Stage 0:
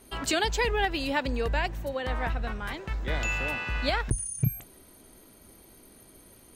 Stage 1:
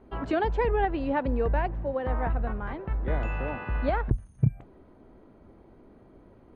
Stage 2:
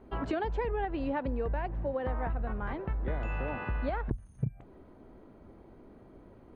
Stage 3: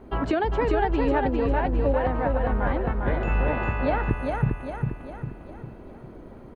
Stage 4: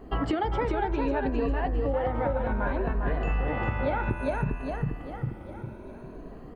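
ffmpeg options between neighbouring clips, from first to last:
-af "lowpass=1.1k,volume=3dB"
-af "acompressor=threshold=-29dB:ratio=5"
-af "aecho=1:1:402|804|1206|1608|2010|2412:0.668|0.321|0.154|0.0739|0.0355|0.017,volume=8dB"
-af "afftfilt=real='re*pow(10,9/40*sin(2*PI*(1.5*log(max(b,1)*sr/1024/100)/log(2)-(0.62)*(pts-256)/sr)))':imag='im*pow(10,9/40*sin(2*PI*(1.5*log(max(b,1)*sr/1024/100)/log(2)-(0.62)*(pts-256)/sr)))':win_size=1024:overlap=0.75,acompressor=threshold=-23dB:ratio=6,bandreject=f=83.14:t=h:w=4,bandreject=f=166.28:t=h:w=4,bandreject=f=249.42:t=h:w=4,bandreject=f=332.56:t=h:w=4,bandreject=f=415.7:t=h:w=4,bandreject=f=498.84:t=h:w=4,bandreject=f=581.98:t=h:w=4,bandreject=f=665.12:t=h:w=4,bandreject=f=748.26:t=h:w=4,bandreject=f=831.4:t=h:w=4,bandreject=f=914.54:t=h:w=4,bandreject=f=997.68:t=h:w=4,bandreject=f=1.08082k:t=h:w=4,bandreject=f=1.16396k:t=h:w=4,bandreject=f=1.2471k:t=h:w=4,bandreject=f=1.33024k:t=h:w=4,bandreject=f=1.41338k:t=h:w=4,bandreject=f=1.49652k:t=h:w=4,bandreject=f=1.57966k:t=h:w=4,bandreject=f=1.6628k:t=h:w=4,bandreject=f=1.74594k:t=h:w=4,bandreject=f=1.82908k:t=h:w=4,bandreject=f=1.91222k:t=h:w=4,bandreject=f=1.99536k:t=h:w=4,bandreject=f=2.0785k:t=h:w=4,bandreject=f=2.16164k:t=h:w=4,bandreject=f=2.24478k:t=h:w=4,bandreject=f=2.32792k:t=h:w=4,bandreject=f=2.41106k:t=h:w=4,bandreject=f=2.4942k:t=h:w=4"

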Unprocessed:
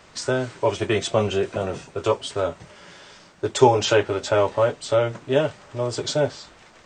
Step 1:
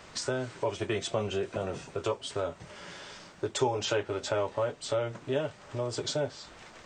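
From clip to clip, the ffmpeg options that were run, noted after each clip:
-af "acompressor=threshold=-35dB:ratio=2"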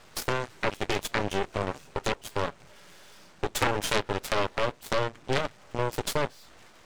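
-af "aeval=exprs='max(val(0),0)':c=same,aeval=exprs='0.2*(cos(1*acos(clip(val(0)/0.2,-1,1)))-cos(1*PI/2))+0.0891*(cos(8*acos(clip(val(0)/0.2,-1,1)))-cos(8*PI/2))':c=same,volume=4dB"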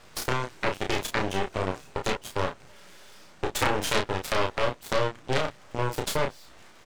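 -filter_complex "[0:a]asplit=2[a][b];[b]adelay=32,volume=-5dB[c];[a][c]amix=inputs=2:normalize=0"

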